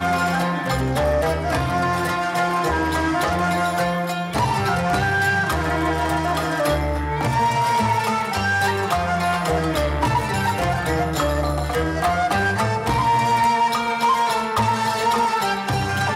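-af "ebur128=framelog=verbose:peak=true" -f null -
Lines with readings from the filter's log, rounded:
Integrated loudness:
  I:         -20.5 LUFS
  Threshold: -30.5 LUFS
Loudness range:
  LRA:         1.7 LU
  Threshold: -40.5 LUFS
  LRA low:   -21.1 LUFS
  LRA high:  -19.4 LUFS
True peak:
  Peak:       -9.1 dBFS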